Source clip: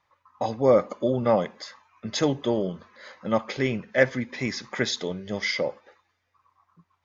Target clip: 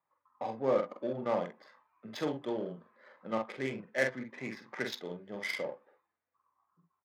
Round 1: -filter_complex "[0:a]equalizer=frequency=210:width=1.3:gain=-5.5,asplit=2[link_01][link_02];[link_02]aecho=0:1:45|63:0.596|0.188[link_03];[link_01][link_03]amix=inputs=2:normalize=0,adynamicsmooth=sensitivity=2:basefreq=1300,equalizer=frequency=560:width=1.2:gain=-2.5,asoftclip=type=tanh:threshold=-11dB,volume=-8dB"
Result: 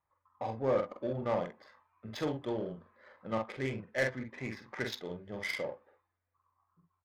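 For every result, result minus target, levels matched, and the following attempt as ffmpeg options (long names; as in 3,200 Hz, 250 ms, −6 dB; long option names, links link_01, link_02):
soft clipping: distortion +15 dB; 125 Hz band +6.0 dB
-filter_complex "[0:a]equalizer=frequency=210:width=1.3:gain=-5.5,asplit=2[link_01][link_02];[link_02]aecho=0:1:45|63:0.596|0.188[link_03];[link_01][link_03]amix=inputs=2:normalize=0,adynamicsmooth=sensitivity=2:basefreq=1300,equalizer=frequency=560:width=1.2:gain=-2.5,asoftclip=type=tanh:threshold=-2.5dB,volume=-8dB"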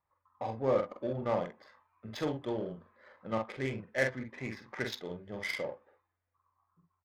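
125 Hz band +5.5 dB
-filter_complex "[0:a]equalizer=frequency=210:width=1.3:gain=-5.5,asplit=2[link_01][link_02];[link_02]aecho=0:1:45|63:0.596|0.188[link_03];[link_01][link_03]amix=inputs=2:normalize=0,adynamicsmooth=sensitivity=2:basefreq=1300,highpass=frequency=150:width=0.5412,highpass=frequency=150:width=1.3066,equalizer=frequency=560:width=1.2:gain=-2.5,asoftclip=type=tanh:threshold=-2.5dB,volume=-8dB"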